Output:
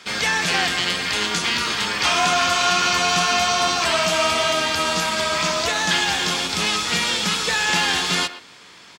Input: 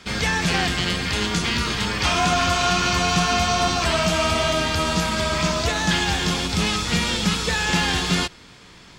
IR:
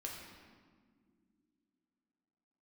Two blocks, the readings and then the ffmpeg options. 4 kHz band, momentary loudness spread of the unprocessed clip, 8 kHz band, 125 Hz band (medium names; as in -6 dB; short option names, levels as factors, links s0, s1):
+3.0 dB, 3 LU, +3.0 dB, -9.5 dB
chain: -filter_complex "[0:a]highpass=f=570:p=1,asplit=2[s0][s1];[s1]adelay=120,highpass=300,lowpass=3400,asoftclip=type=hard:threshold=0.106,volume=0.224[s2];[s0][s2]amix=inputs=2:normalize=0,volume=1.41"